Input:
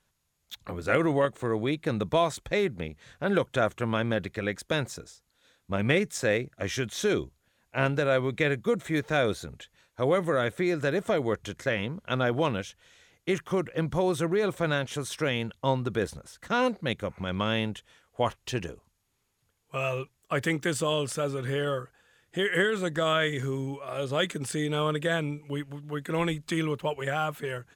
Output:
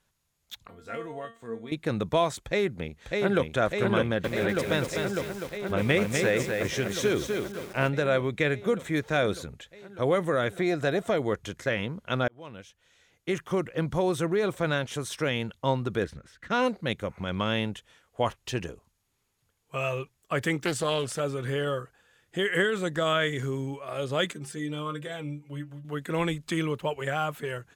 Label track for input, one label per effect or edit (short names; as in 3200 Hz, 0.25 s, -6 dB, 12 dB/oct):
0.670000	1.720000	resonator 230 Hz, decay 0.29 s, mix 90%
2.410000	3.490000	echo throw 0.6 s, feedback 80%, level -2.5 dB
3.990000	7.890000	lo-fi delay 0.25 s, feedback 35%, word length 7-bit, level -4 dB
10.520000	11.080000	small resonant body resonances 700/3800 Hz, height 11 dB
12.280000	13.520000	fade in
16.040000	16.510000	EQ curve 320 Hz 0 dB, 860 Hz -10 dB, 1700 Hz +4 dB, 10000 Hz -14 dB
20.630000	21.200000	Doppler distortion depth 0.3 ms
24.330000	25.850000	metallic resonator 70 Hz, decay 0.23 s, inharmonicity 0.008